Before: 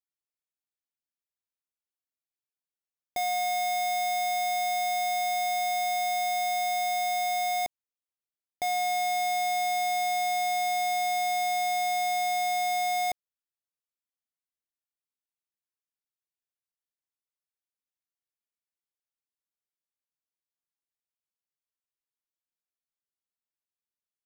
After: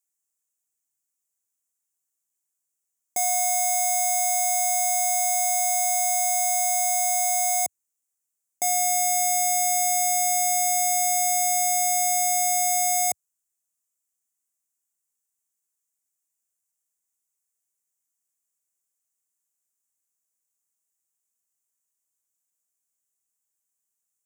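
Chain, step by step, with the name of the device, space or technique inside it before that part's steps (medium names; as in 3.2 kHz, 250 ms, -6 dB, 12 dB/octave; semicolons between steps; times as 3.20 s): budget condenser microphone (high-pass 85 Hz 24 dB/octave; resonant high shelf 5.4 kHz +11 dB, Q 3); trim +1.5 dB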